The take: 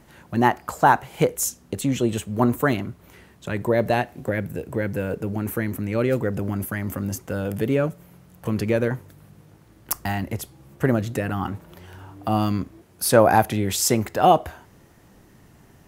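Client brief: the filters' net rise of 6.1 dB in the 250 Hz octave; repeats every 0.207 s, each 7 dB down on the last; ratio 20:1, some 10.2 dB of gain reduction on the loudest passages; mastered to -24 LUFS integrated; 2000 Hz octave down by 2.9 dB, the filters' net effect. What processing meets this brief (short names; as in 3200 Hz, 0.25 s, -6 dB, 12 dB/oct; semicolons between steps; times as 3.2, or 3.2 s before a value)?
bell 250 Hz +7.5 dB; bell 2000 Hz -4 dB; compressor 20:1, threshold -18 dBFS; feedback echo 0.207 s, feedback 45%, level -7 dB; gain +1 dB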